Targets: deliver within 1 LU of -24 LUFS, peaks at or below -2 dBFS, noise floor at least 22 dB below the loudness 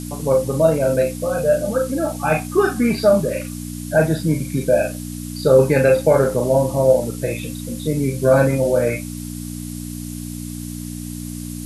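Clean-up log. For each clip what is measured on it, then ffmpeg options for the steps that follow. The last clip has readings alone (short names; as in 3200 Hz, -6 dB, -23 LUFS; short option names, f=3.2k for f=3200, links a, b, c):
hum 60 Hz; harmonics up to 300 Hz; hum level -27 dBFS; noise floor -30 dBFS; noise floor target -40 dBFS; loudness -18.0 LUFS; peak -2.5 dBFS; loudness target -24.0 LUFS
-> -af "bandreject=f=60:t=h:w=4,bandreject=f=120:t=h:w=4,bandreject=f=180:t=h:w=4,bandreject=f=240:t=h:w=4,bandreject=f=300:t=h:w=4"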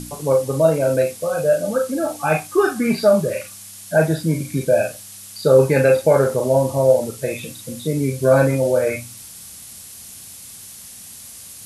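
hum none; noise floor -39 dBFS; noise floor target -41 dBFS
-> -af "afftdn=nr=6:nf=-39"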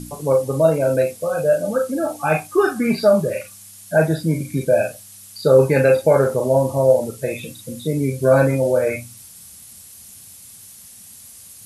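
noise floor -43 dBFS; loudness -18.5 LUFS; peak -2.5 dBFS; loudness target -24.0 LUFS
-> -af "volume=-5.5dB"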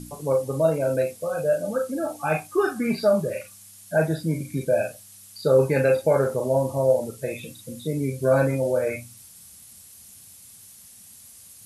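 loudness -24.0 LUFS; peak -8.0 dBFS; noise floor -48 dBFS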